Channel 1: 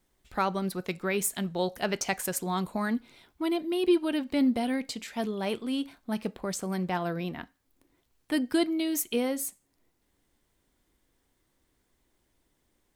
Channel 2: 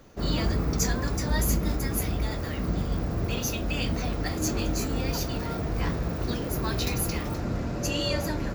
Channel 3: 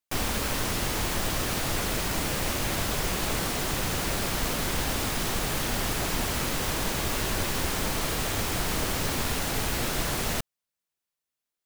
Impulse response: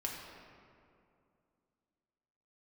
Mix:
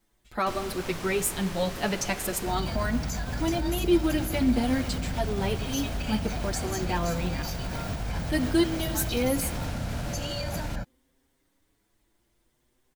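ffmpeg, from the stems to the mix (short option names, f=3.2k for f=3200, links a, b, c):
-filter_complex "[0:a]asplit=2[a][b];[b]adelay=6.6,afreqshift=0.5[c];[a][c]amix=inputs=2:normalize=1,volume=2.5dB,asplit=2[d][e];[e]volume=-11dB[f];[1:a]aecho=1:1:1.3:0.93,adelay=2300,volume=-4dB[g];[2:a]highshelf=f=9.4k:g=-10,adelay=350,volume=-8.5dB[h];[g][h]amix=inputs=2:normalize=0,alimiter=limit=-22.5dB:level=0:latency=1:release=88,volume=0dB[i];[3:a]atrim=start_sample=2205[j];[f][j]afir=irnorm=-1:irlink=0[k];[d][i][k]amix=inputs=3:normalize=0"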